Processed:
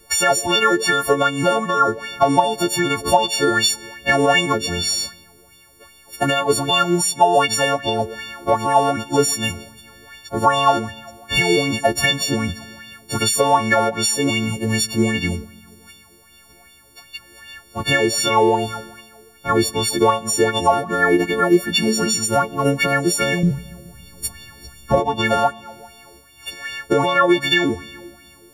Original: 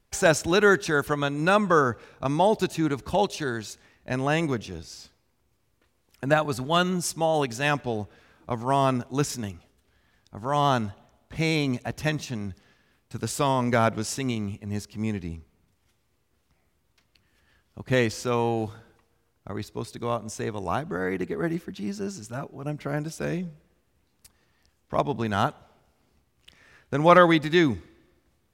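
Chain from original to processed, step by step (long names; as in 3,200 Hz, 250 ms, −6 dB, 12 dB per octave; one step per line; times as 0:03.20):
every partial snapped to a pitch grid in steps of 4 semitones
dynamic equaliser 750 Hz, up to +5 dB, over −33 dBFS, Q 0.84
downward compressor 8 to 1, threshold −30 dBFS, peak gain reduction 22.5 dB
0:23.43–0:25.00: bass and treble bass +15 dB, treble +3 dB
on a send: bucket-brigade delay 141 ms, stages 1,024, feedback 61%, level −20 dB
on the sum: boost into a limiter +23 dB
auto-filter bell 2.6 Hz 350–3,500 Hz +13 dB
level −10 dB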